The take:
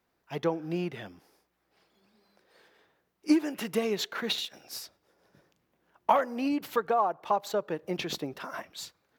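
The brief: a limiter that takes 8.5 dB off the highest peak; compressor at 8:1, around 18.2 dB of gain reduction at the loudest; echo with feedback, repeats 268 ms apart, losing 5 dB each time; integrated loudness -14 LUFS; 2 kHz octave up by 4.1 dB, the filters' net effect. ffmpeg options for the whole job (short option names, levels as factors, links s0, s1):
-af "equalizer=f=2000:t=o:g=5.5,acompressor=threshold=0.0141:ratio=8,alimiter=level_in=2.66:limit=0.0631:level=0:latency=1,volume=0.376,aecho=1:1:268|536|804|1072|1340|1608|1876:0.562|0.315|0.176|0.0988|0.0553|0.031|0.0173,volume=26.6"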